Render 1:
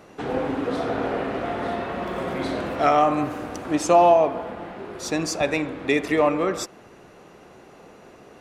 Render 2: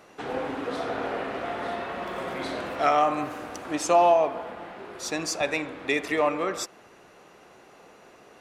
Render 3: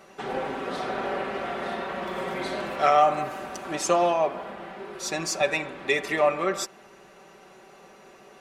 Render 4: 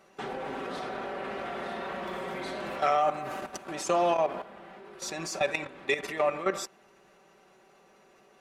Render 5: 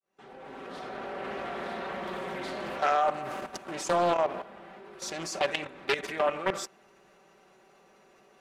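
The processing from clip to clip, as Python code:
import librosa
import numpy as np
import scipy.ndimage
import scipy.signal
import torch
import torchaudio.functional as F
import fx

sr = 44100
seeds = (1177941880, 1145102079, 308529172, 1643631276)

y1 = fx.low_shelf(x, sr, hz=420.0, db=-9.5)
y1 = F.gain(torch.from_numpy(y1), -1.0).numpy()
y2 = y1 + 0.65 * np.pad(y1, (int(5.2 * sr / 1000.0), 0))[:len(y1)]
y3 = fx.level_steps(y2, sr, step_db=12)
y4 = fx.fade_in_head(y3, sr, length_s=1.31)
y4 = fx.doppler_dist(y4, sr, depth_ms=0.45)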